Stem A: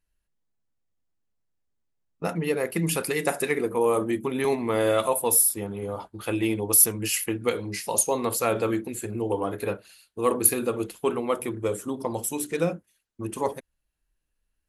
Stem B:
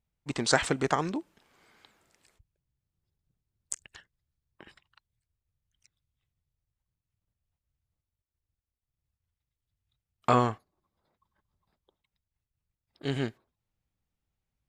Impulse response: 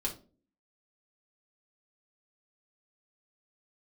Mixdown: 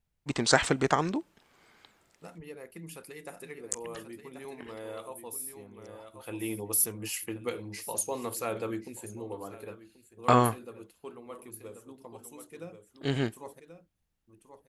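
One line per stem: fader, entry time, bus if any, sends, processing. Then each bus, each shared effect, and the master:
-9.0 dB, 0.00 s, no send, echo send -18 dB, auto duck -10 dB, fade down 1.45 s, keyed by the second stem
+1.5 dB, 0.00 s, no send, no echo send, dry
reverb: off
echo: echo 1.083 s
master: dry

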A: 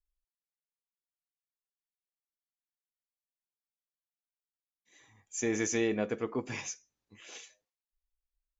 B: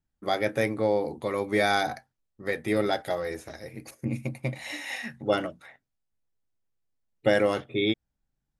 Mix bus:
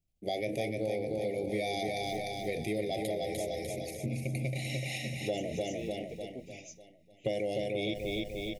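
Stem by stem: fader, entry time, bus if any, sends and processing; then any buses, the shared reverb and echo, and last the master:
-10.0 dB, 0.00 s, no send, no echo send, dry
-0.5 dB, 0.00 s, no send, echo send -4 dB, bell 260 Hz -8.5 dB 0.28 oct; sustainer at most 66 dB/s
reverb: off
echo: feedback echo 0.299 s, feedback 47%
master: elliptic band-stop 720–2200 Hz, stop band 40 dB; compressor 4:1, threshold -31 dBFS, peak gain reduction 10.5 dB

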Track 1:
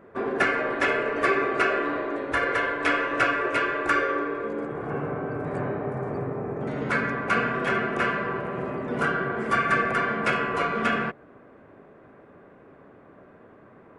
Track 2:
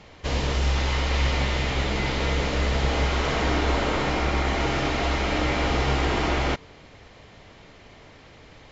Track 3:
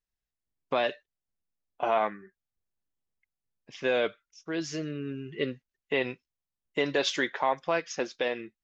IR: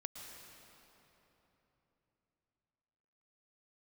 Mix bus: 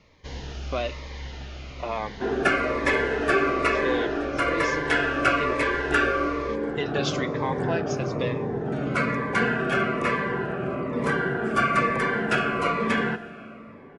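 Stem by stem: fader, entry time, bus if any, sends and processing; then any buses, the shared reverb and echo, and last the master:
+1.0 dB, 2.05 s, send -6.5 dB, low-pass opened by the level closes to 2000 Hz, open at -23.5 dBFS
-9.5 dB, 0.00 s, send -10 dB, Chebyshev low-pass 6700 Hz, order 6; auto duck -7 dB, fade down 1.50 s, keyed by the third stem
-1.0 dB, 0.00 s, send -14 dB, dry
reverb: on, RT60 3.6 s, pre-delay 0.105 s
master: cascading phaser falling 1.1 Hz

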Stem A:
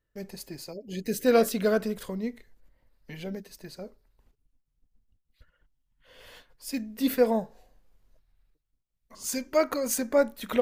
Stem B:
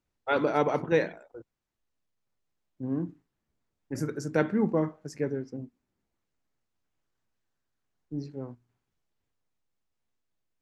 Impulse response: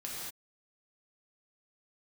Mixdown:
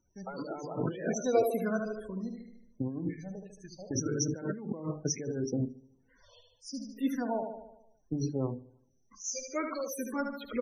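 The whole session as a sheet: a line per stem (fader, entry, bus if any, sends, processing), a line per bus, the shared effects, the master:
-4.0 dB, 0.00 s, no send, echo send -5.5 dB, expander -53 dBFS; endless phaser -2 Hz
+2.5 dB, 0.00 s, no send, echo send -22 dB, notches 50/100/150/200/250/300/350/400/450/500 Hz; negative-ratio compressor -38 dBFS, ratio -1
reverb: off
echo: feedback echo 75 ms, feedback 55%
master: bell 5900 Hz +12 dB 0.24 oct; loudest bins only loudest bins 32

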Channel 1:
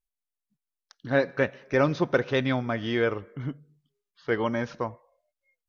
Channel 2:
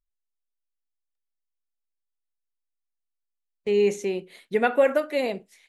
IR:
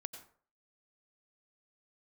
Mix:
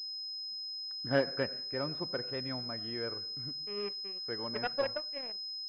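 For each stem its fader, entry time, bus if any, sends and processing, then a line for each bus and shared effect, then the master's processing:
1.19 s -8.5 dB -> 1.76 s -17.5 dB, 0.00 s, send -3.5 dB, dry
-7.0 dB, 0.00 s, send -19 dB, low shelf 420 Hz -6.5 dB; power-law curve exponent 2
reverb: on, RT60 0.50 s, pre-delay 83 ms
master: pulse-width modulation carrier 5100 Hz

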